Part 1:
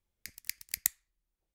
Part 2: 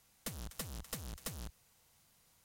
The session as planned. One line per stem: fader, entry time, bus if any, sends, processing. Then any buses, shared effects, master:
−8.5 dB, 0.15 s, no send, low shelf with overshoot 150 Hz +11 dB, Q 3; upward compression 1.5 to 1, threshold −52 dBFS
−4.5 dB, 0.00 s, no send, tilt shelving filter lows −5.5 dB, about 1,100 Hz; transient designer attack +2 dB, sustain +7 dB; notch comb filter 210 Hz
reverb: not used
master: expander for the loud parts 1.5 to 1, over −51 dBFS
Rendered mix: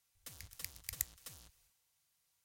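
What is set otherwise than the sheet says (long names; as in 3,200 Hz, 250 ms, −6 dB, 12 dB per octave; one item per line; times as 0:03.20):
stem 2 −4.5 dB → −13.0 dB
master: missing expander for the loud parts 1.5 to 1, over −51 dBFS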